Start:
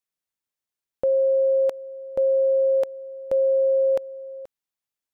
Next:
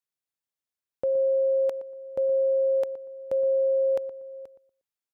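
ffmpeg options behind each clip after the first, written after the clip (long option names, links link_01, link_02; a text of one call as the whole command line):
ffmpeg -i in.wav -filter_complex "[0:a]highpass=43,asplit=2[link_01][link_02];[link_02]adelay=119,lowpass=frequency=990:poles=1,volume=-11.5dB,asplit=2[link_03][link_04];[link_04]adelay=119,lowpass=frequency=990:poles=1,volume=0.27,asplit=2[link_05][link_06];[link_06]adelay=119,lowpass=frequency=990:poles=1,volume=0.27[link_07];[link_01][link_03][link_05][link_07]amix=inputs=4:normalize=0,volume=-4.5dB" out.wav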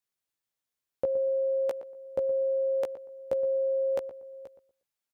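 ffmpeg -i in.wav -filter_complex "[0:a]asplit=2[link_01][link_02];[link_02]adelay=16,volume=-4dB[link_03];[link_01][link_03]amix=inputs=2:normalize=0,volume=1.5dB" out.wav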